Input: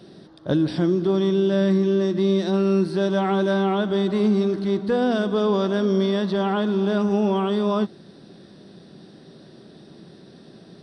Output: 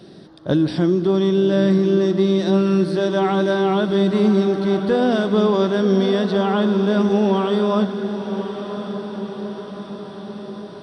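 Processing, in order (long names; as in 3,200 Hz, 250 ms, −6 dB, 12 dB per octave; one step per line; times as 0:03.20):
feedback delay with all-pass diffusion 1,091 ms, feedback 59%, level −9.5 dB
level +3 dB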